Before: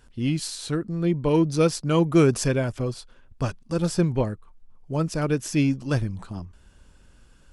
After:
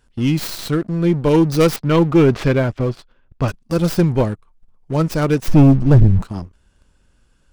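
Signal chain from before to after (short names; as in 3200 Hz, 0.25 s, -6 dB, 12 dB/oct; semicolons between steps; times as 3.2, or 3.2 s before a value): tracing distortion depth 0.3 ms; 1.76–3.48 LPF 3600 Hz 12 dB/oct; 5.48–6.22 tilt -4 dB/oct; sample leveller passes 2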